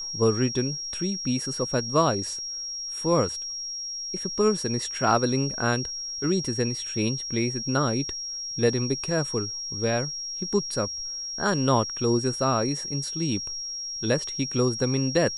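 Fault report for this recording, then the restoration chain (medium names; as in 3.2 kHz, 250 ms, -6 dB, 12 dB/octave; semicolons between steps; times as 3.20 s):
whine 5.6 kHz -31 dBFS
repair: band-stop 5.6 kHz, Q 30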